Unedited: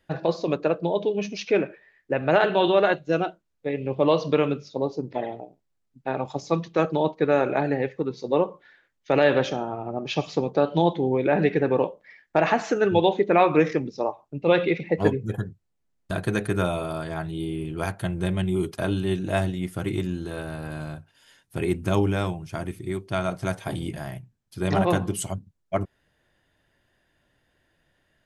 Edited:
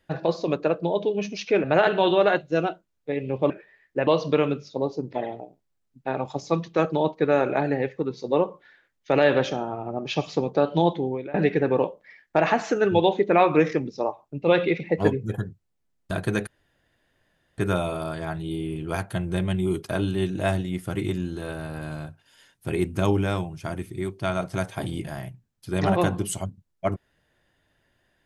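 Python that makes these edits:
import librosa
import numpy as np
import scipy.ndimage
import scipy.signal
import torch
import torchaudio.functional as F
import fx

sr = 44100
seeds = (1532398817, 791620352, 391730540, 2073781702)

y = fx.edit(x, sr, fx.move(start_s=1.64, length_s=0.57, to_s=4.07),
    fx.fade_out_to(start_s=10.92, length_s=0.42, floor_db=-23.5),
    fx.insert_room_tone(at_s=16.47, length_s=1.11), tone=tone)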